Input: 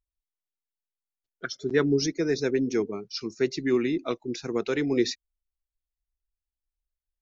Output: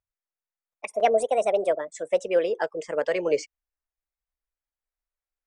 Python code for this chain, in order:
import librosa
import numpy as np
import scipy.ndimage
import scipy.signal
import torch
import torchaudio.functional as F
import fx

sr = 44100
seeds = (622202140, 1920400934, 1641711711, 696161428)

y = fx.speed_glide(x, sr, from_pct=178, to_pct=86)
y = fx.band_shelf(y, sr, hz=1000.0, db=11.5, octaves=2.7)
y = y * 10.0 ** (-7.5 / 20.0)